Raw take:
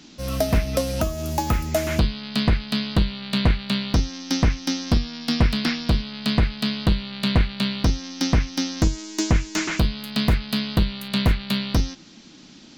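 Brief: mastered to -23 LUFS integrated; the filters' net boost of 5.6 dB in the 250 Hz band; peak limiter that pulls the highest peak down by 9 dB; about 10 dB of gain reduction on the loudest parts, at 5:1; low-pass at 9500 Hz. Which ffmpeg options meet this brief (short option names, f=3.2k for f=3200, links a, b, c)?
-af "lowpass=9.5k,equalizer=f=250:t=o:g=7,acompressor=threshold=-24dB:ratio=5,volume=7dB,alimiter=limit=-13dB:level=0:latency=1"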